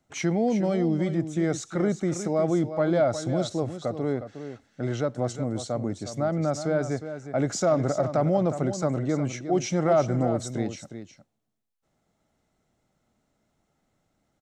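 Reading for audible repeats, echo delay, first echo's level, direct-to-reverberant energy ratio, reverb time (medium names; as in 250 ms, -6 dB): 1, 360 ms, -10.5 dB, no reverb, no reverb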